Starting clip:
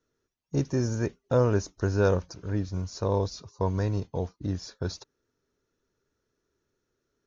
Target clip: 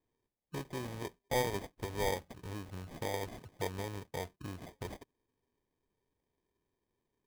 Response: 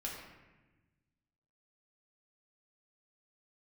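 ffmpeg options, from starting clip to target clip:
-filter_complex "[0:a]acrossover=split=450[link_01][link_02];[link_01]acompressor=threshold=-37dB:ratio=6[link_03];[link_03][link_02]amix=inputs=2:normalize=0,acrusher=samples=32:mix=1:aa=0.000001,volume=-5.5dB"

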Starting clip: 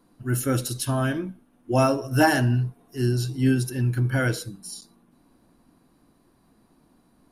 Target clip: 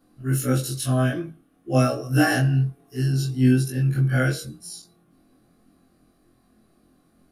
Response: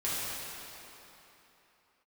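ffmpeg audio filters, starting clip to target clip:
-af "afftfilt=real='re':imag='-im':win_size=2048:overlap=0.75,asuperstop=centerf=930:order=8:qfactor=5.1,volume=4.5dB"

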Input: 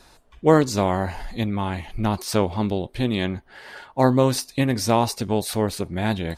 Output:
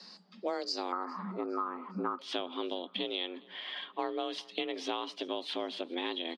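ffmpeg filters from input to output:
ffmpeg -i in.wav -af "asetnsamples=nb_out_samples=441:pad=0,asendcmd='0.92 lowpass f 1100;2.19 lowpass f 3100',lowpass=frequency=4600:width_type=q:width=11,acompressor=threshold=-26dB:ratio=5,aecho=1:1:410|820|1230:0.0631|0.0303|0.0145,afreqshift=170,volume=-7dB" out.wav

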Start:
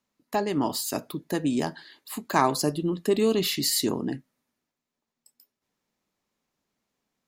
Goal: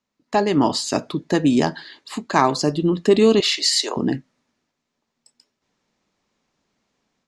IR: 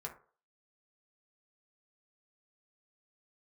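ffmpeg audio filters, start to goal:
-filter_complex "[0:a]lowpass=frequency=7100:width=0.5412,lowpass=frequency=7100:width=1.3066,dynaudnorm=framelen=190:gausssize=3:maxgain=9dB,asettb=1/sr,asplit=3[link_01][link_02][link_03];[link_01]atrim=end=3.404[link_04];[link_02]atrim=start=3.4:end=3.97,asetpts=PTS-STARTPTS,afade=type=in:duration=0.004:curve=qsin,afade=type=out:start_time=0.566:duration=0.004:curve=qsin,highpass=frequency=520:width=0.5412,highpass=frequency=520:width=1.3066[link_05];[link_03]atrim=start=3.966[link_06];[link_04][link_05]acrossfade=duration=0.004:curve1=hsin:curve2=qsin[link_07];[link_07][link_06]acrossfade=duration=0.004:curve1=qsin:curve2=hsin"

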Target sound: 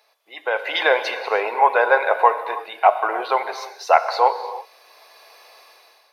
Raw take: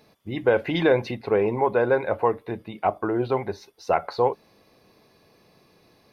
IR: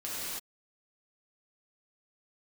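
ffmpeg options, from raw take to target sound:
-filter_complex "[0:a]highpass=frequency=650:width=0.5412,highpass=frequency=650:width=1.3066,dynaudnorm=framelen=260:gausssize=5:maxgain=14.5dB,asplit=2[link_01][link_02];[1:a]atrim=start_sample=2205[link_03];[link_02][link_03]afir=irnorm=-1:irlink=0,volume=-13dB[link_04];[link_01][link_04]amix=inputs=2:normalize=0,volume=-1dB"

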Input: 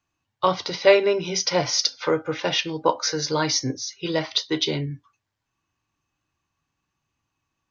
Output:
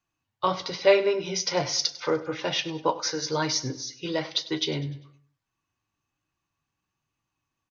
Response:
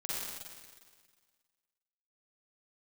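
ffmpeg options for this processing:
-filter_complex "[0:a]flanger=delay=5.2:depth=5:regen=-56:speed=1.1:shape=triangular,asplit=2[link_01][link_02];[link_02]aecho=0:1:99|198|297|396:0.141|0.0622|0.0273|0.012[link_03];[link_01][link_03]amix=inputs=2:normalize=0"

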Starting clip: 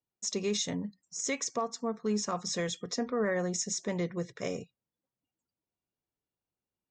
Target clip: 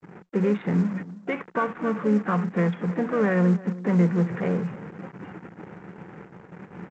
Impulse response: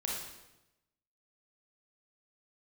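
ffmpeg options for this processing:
-filter_complex "[0:a]aeval=exprs='val(0)+0.5*0.0188*sgn(val(0))':channel_layout=same,adynamicequalizer=threshold=0.00178:dfrequency=1100:dqfactor=6:tfrequency=1100:tqfactor=6:attack=5:release=100:ratio=0.375:range=3.5:mode=boostabove:tftype=bell,asplit=3[link_01][link_02][link_03];[link_02]asetrate=55563,aresample=44100,atempo=0.793701,volume=-14dB[link_04];[link_03]asetrate=58866,aresample=44100,atempo=0.749154,volume=-12dB[link_05];[link_01][link_04][link_05]amix=inputs=3:normalize=0,aresample=8000,acrusher=bits=6:mix=0:aa=0.000001,aresample=44100,agate=range=-55dB:threshold=-43dB:ratio=16:detection=peak,asplit=2[link_06][link_07];[link_07]aecho=0:1:316:0.133[link_08];[link_06][link_08]amix=inputs=2:normalize=0,adynamicsmooth=sensitivity=6.5:basefreq=840,highpass=150,equalizer=frequency=180:width_type=q:width=4:gain=10,equalizer=frequency=260:width_type=q:width=4:gain=-5,equalizer=frequency=640:width_type=q:width=4:gain=-9,equalizer=frequency=1100:width_type=q:width=4:gain=-6,lowpass=frequency=2100:width=0.5412,lowpass=frequency=2100:width=1.3066,volume=6.5dB" -ar 16000 -c:a pcm_mulaw

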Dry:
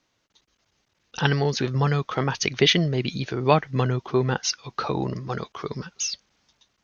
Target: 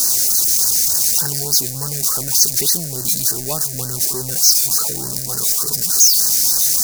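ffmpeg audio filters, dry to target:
ffmpeg -i in.wav -af "aeval=exprs='val(0)+0.5*0.141*sgn(val(0))':channel_layout=same,aexciter=amount=11.2:drive=8.2:freq=4800,afftfilt=real='re*(1-between(b*sr/1024,990*pow(2800/990,0.5+0.5*sin(2*PI*3.4*pts/sr))/1.41,990*pow(2800/990,0.5+0.5*sin(2*PI*3.4*pts/sr))*1.41))':imag='im*(1-between(b*sr/1024,990*pow(2800/990,0.5+0.5*sin(2*PI*3.4*pts/sr))/1.41,990*pow(2800/990,0.5+0.5*sin(2*PI*3.4*pts/sr))*1.41))':win_size=1024:overlap=0.75,volume=-11.5dB" out.wav

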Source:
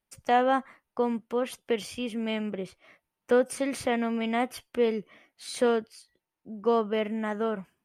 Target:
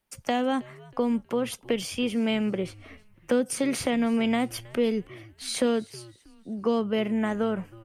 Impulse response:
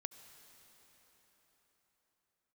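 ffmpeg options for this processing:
-filter_complex "[0:a]acrossover=split=320|3000[link_01][link_02][link_03];[link_02]acompressor=threshold=-34dB:ratio=6[link_04];[link_01][link_04][link_03]amix=inputs=3:normalize=0,asplit=4[link_05][link_06][link_07][link_08];[link_06]adelay=319,afreqshift=-110,volume=-22dB[link_09];[link_07]adelay=638,afreqshift=-220,volume=-29.7dB[link_10];[link_08]adelay=957,afreqshift=-330,volume=-37.5dB[link_11];[link_05][link_09][link_10][link_11]amix=inputs=4:normalize=0,volume=6dB"

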